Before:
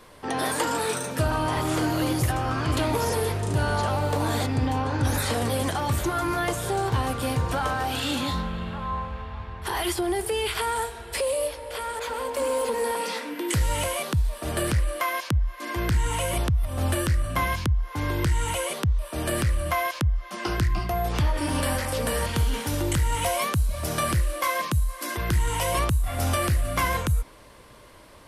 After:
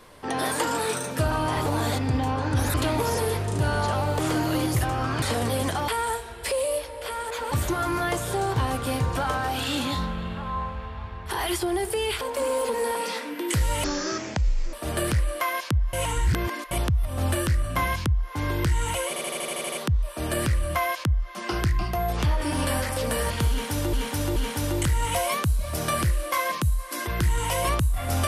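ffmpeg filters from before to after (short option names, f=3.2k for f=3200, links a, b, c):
-filter_complex "[0:a]asplit=22[a][b][c][d][e][f][g][h][i][j][k][l][m][n][o][p][q][r][s][t][u][v];[a]atrim=end=1.662[w];[b]atrim=start=4.138:end=5.222[x];[c]atrim=start=2.688:end=4.142[y];[d]atrim=start=1.658:end=2.692[z];[e]atrim=start=5.218:end=5.882[aa];[f]atrim=start=10.568:end=12.212[ab];[g]atrim=start=5.878:end=10.572[ac];[h]atrim=start=12.208:end=13.844[ad];[i]atrim=start=13.84:end=14.33,asetpts=PTS-STARTPTS,asetrate=24255,aresample=44100,atrim=end_sample=39289,asetpts=PTS-STARTPTS[ae];[j]atrim=start=14.326:end=15.532[af];[k]atrim=start=15.528:end=16.312,asetpts=PTS-STARTPTS,areverse[ag];[l]atrim=start=16.308:end=18.762[ah];[m]atrim=start=18.678:end=18.762[ai];[n]atrim=start=18.678:end=18.762[aj];[o]atrim=start=18.678:end=18.762[ak];[p]atrim=start=18.678:end=18.762[al];[q]atrim=start=18.678:end=18.762[am];[r]atrim=start=18.678:end=18.762[an];[s]atrim=start=18.678:end=18.762[ao];[t]atrim=start=18.678:end=22.892[ap];[u]atrim=start=22.458:end=22.892[aq];[v]atrim=start=22.458[ar];[w][x]acrossfade=d=0.004:c1=hsin:c2=hsin[as];[as][y]acrossfade=d=0.004:c1=hsin:c2=hsin[at];[at][z]acrossfade=d=0.004:c1=hsin:c2=hsin[au];[au][aa]acrossfade=d=0.004:c1=hsin:c2=hsin[av];[av][ab]acrossfade=d=0.004:c1=hsin:c2=hsin[aw];[aw][ac]acrossfade=d=0.004:c1=hsin:c2=hsin[ax];[ax][ad]acrossfade=d=0.004:c1=hsin:c2=hsin[ay];[ay][ae]acrossfade=d=0.004:c1=hsin:c2=hsin[az];[az][af]acrossfade=d=0.004:c1=hsin:c2=hsin[ba];[ba][ag]acrossfade=d=0.004:c1=hsin:c2=hsin[bb];[bb][ah]acrossfade=d=0.004:c1=hsin:c2=hsin[bc];[bc][ai]acrossfade=d=0.004:c1=hsin:c2=hsin[bd];[bd][aj]acrossfade=d=0.004:c1=hsin:c2=hsin[be];[be][ak]acrossfade=d=0.004:c1=hsin:c2=hsin[bf];[bf][al]acrossfade=d=0.004:c1=hsin:c2=hsin[bg];[bg][am]acrossfade=d=0.004:c1=hsin:c2=hsin[bh];[bh][an]acrossfade=d=0.004:c1=hsin:c2=hsin[bi];[bi][ao]acrossfade=d=0.004:c1=hsin:c2=hsin[bj];[bj][ap]acrossfade=d=0.004:c1=hsin:c2=hsin[bk];[bk][aq]acrossfade=d=0.004:c1=hsin:c2=hsin[bl];[bl][ar]acrossfade=d=0.004:c1=hsin:c2=hsin"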